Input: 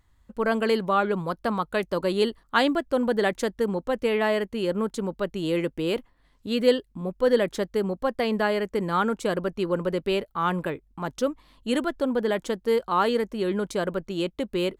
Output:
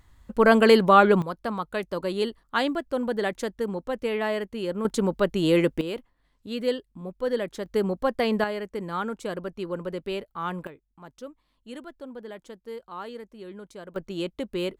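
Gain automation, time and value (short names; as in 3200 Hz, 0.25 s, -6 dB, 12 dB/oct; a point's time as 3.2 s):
+7 dB
from 1.22 s -3.5 dB
from 4.85 s +5 dB
from 5.81 s -6 dB
from 7.66 s +1 dB
from 8.44 s -6 dB
from 10.67 s -15 dB
from 13.96 s -3 dB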